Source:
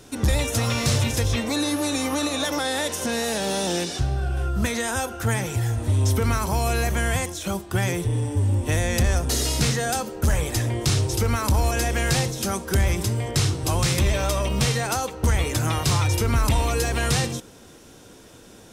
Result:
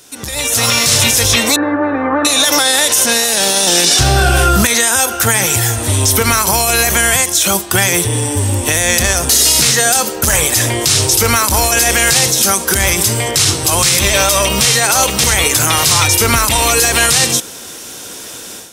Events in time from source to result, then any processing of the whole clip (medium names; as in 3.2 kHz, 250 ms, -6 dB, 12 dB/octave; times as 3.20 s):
1.56–2.25 s: Chebyshev low-pass 1.7 kHz, order 4
3.72–4.67 s: gain +9 dB
14.34–14.75 s: echo throw 580 ms, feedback 30%, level -5 dB
whole clip: tilt EQ +3 dB/octave; peak limiter -16 dBFS; level rider gain up to 14 dB; trim +2 dB